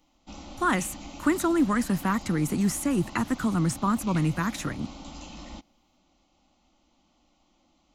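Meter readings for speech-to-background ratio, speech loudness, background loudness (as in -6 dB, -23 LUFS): 16.0 dB, -27.0 LUFS, -43.0 LUFS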